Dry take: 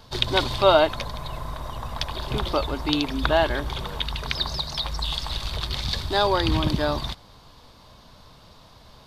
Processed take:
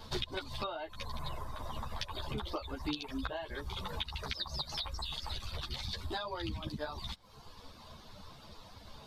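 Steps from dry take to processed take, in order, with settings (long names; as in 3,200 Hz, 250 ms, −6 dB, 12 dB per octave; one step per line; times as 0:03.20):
downward compressor 16 to 1, threshold −33 dBFS, peak gain reduction 22 dB
reverb reduction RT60 1.1 s
string-ensemble chorus
level +3 dB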